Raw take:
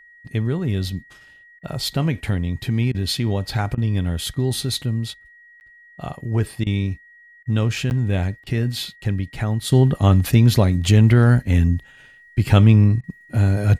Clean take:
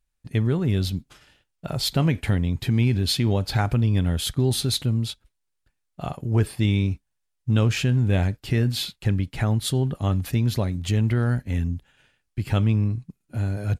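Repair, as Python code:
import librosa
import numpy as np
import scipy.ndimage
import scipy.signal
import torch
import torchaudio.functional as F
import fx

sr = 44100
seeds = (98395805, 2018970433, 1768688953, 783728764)

y = fx.notch(x, sr, hz=1900.0, q=30.0)
y = fx.fix_interpolate(y, sr, at_s=(5.6, 7.9), length_ms=9.9)
y = fx.fix_interpolate(y, sr, at_s=(1.59, 2.92, 3.75, 6.64, 7.43, 8.44, 13.01), length_ms=24.0)
y = fx.fix_level(y, sr, at_s=9.72, step_db=-8.5)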